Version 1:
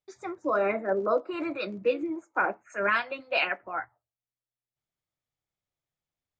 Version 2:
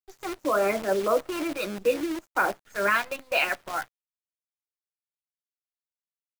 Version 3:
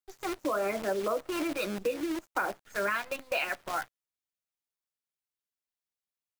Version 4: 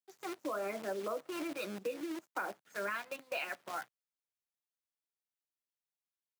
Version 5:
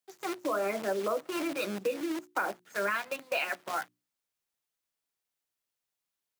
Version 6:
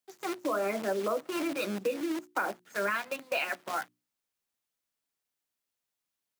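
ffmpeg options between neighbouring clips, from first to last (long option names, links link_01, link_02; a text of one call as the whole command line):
ffmpeg -i in.wav -af "acrusher=bits=7:dc=4:mix=0:aa=0.000001,volume=2dB" out.wav
ffmpeg -i in.wav -af "acompressor=threshold=-28dB:ratio=4" out.wav
ffmpeg -i in.wav -af "highpass=frequency=140:width=0.5412,highpass=frequency=140:width=1.3066,volume=-7.5dB" out.wav
ffmpeg -i in.wav -af "bandreject=frequency=60:width_type=h:width=6,bandreject=frequency=120:width_type=h:width=6,bandreject=frequency=180:width_type=h:width=6,bandreject=frequency=240:width_type=h:width=6,bandreject=frequency=300:width_type=h:width=6,bandreject=frequency=360:width_type=h:width=6,volume=7dB" out.wav
ffmpeg -i in.wav -af "equalizer=frequency=240:width_type=o:width=0.58:gain=3.5" out.wav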